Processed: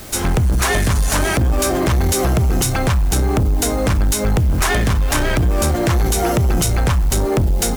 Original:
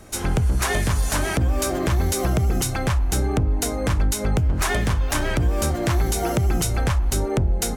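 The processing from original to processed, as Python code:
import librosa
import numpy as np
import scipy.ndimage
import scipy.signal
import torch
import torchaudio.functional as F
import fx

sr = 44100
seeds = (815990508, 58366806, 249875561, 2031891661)

p1 = fx.quant_dither(x, sr, seeds[0], bits=6, dither='triangular')
p2 = x + (p1 * librosa.db_to_amplitude(-8.0))
p3 = 10.0 ** (-16.5 / 20.0) * np.tanh(p2 / 10.0 ** (-16.5 / 20.0))
y = p3 * librosa.db_to_amplitude(5.5)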